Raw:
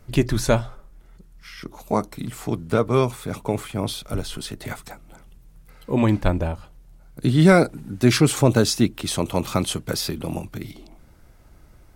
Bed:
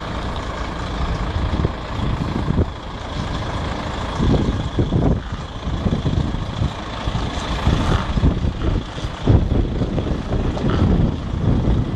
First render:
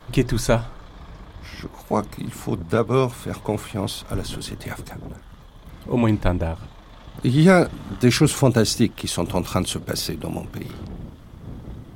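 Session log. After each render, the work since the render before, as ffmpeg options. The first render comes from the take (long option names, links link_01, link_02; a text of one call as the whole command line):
ffmpeg -i in.wav -i bed.wav -filter_complex "[1:a]volume=-19.5dB[link_01];[0:a][link_01]amix=inputs=2:normalize=0" out.wav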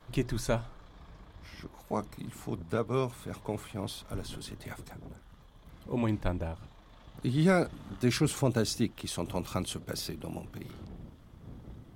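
ffmpeg -i in.wav -af "volume=-11dB" out.wav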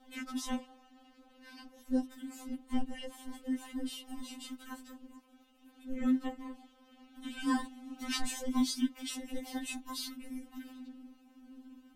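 ffmpeg -i in.wav -af "afreqshift=-470,afftfilt=real='re*3.46*eq(mod(b,12),0)':imag='im*3.46*eq(mod(b,12),0)':win_size=2048:overlap=0.75" out.wav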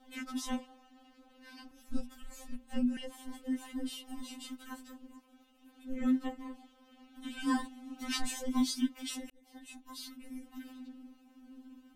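ffmpeg -i in.wav -filter_complex "[0:a]asettb=1/sr,asplit=3[link_01][link_02][link_03];[link_01]atrim=end=1.714[link_04];[link_02]atrim=start=1.71:end=2.97,asetpts=PTS-STARTPTS,afade=type=in:duration=0.004:curve=qsin,afade=type=out:start_time=1.256:duration=0.004:curve=qsin,afreqshift=-250[link_05];[link_03]atrim=start=2.966[link_06];[link_04][link_05]acrossfade=duration=0.004:curve1=hsin:curve2=qsin[link_07];[link_07][link_06]acrossfade=duration=0.004:curve1=qsin:curve2=hsin,asplit=2[link_08][link_09];[link_08]atrim=end=9.3,asetpts=PTS-STARTPTS,afade=type=out:start_time=9.296:duration=0.004:curve=hsin[link_10];[link_09]atrim=start=9.3,asetpts=PTS-STARTPTS,afade=type=in:duration=1.36[link_11];[link_10][link_11]concat=n=2:v=0:a=1" out.wav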